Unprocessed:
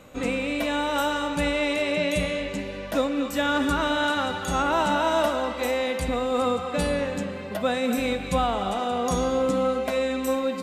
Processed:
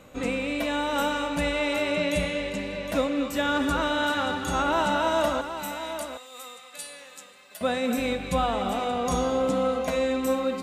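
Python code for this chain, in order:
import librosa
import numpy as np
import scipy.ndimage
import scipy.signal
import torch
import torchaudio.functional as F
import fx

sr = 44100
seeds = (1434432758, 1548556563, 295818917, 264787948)

y = fx.differentiator(x, sr, at=(5.41, 7.61))
y = y + 10.0 ** (-10.0 / 20.0) * np.pad(y, (int(762 * sr / 1000.0), 0))[:len(y)]
y = y * librosa.db_to_amplitude(-1.5)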